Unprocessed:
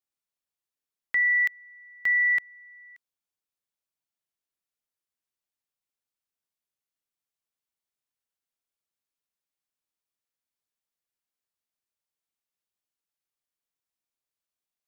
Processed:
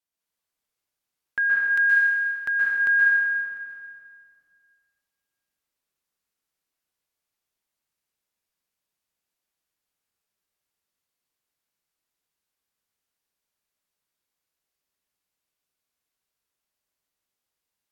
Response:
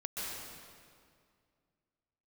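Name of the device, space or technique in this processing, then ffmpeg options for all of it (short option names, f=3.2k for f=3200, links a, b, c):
slowed and reverbed: -filter_complex "[0:a]asetrate=36603,aresample=44100[a];[1:a]atrim=start_sample=2205[b];[a][b]afir=irnorm=-1:irlink=0,volume=4dB"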